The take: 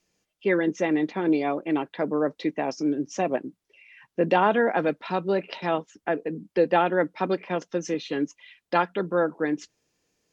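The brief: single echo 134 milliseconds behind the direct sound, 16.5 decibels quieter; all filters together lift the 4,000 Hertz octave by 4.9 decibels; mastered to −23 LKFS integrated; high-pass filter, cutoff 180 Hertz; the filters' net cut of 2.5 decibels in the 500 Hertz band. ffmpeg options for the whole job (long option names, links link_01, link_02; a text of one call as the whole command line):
ffmpeg -i in.wav -af "highpass=180,equalizer=frequency=500:width_type=o:gain=-3,equalizer=frequency=4000:width_type=o:gain=6.5,aecho=1:1:134:0.15,volume=4.5dB" out.wav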